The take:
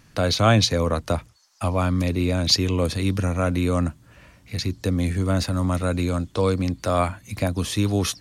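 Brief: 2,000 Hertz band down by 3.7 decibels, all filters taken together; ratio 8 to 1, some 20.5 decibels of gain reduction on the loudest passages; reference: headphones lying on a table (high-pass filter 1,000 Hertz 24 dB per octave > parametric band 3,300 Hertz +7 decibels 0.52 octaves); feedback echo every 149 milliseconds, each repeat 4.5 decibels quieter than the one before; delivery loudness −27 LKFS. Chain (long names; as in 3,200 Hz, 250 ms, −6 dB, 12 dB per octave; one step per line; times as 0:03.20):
parametric band 2,000 Hz −6.5 dB
downward compressor 8 to 1, threshold −35 dBFS
high-pass filter 1,000 Hz 24 dB per octave
parametric band 3,300 Hz +7 dB 0.52 octaves
repeating echo 149 ms, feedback 60%, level −4.5 dB
level +15 dB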